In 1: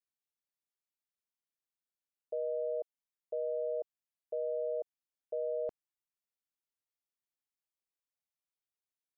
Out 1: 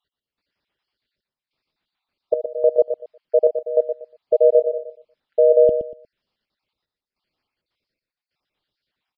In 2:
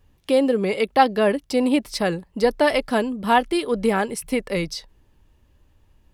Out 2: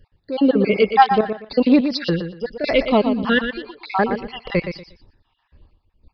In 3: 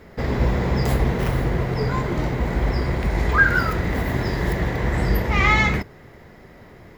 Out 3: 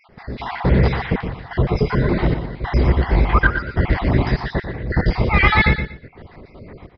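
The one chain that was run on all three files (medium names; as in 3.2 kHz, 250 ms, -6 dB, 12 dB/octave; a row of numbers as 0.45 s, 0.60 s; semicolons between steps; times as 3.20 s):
random holes in the spectrogram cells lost 49%; bass shelf 390 Hz +3 dB; in parallel at -7.5 dB: saturation -17 dBFS; on the sum: trance gate "x....xxxxxxxxxx" 199 bpm -12 dB; on a send: feedback delay 119 ms, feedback 23%, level -8.5 dB; on the sum: resampled via 11.025 kHz; normalise loudness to -19 LUFS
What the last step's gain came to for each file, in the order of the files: +18.5 dB, +2.0 dB, +2.5 dB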